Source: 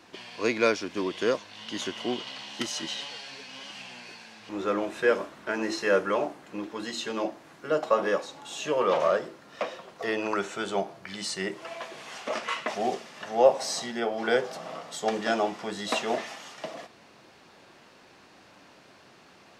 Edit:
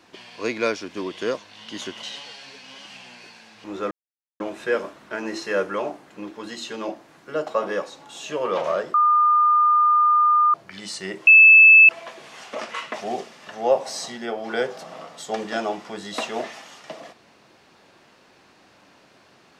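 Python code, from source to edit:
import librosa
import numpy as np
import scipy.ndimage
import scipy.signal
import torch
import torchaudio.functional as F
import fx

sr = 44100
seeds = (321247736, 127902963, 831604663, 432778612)

y = fx.edit(x, sr, fx.cut(start_s=2.03, length_s=0.85),
    fx.insert_silence(at_s=4.76, length_s=0.49),
    fx.bleep(start_s=9.3, length_s=1.6, hz=1210.0, db=-13.5),
    fx.insert_tone(at_s=11.63, length_s=0.62, hz=2620.0, db=-6.5), tone=tone)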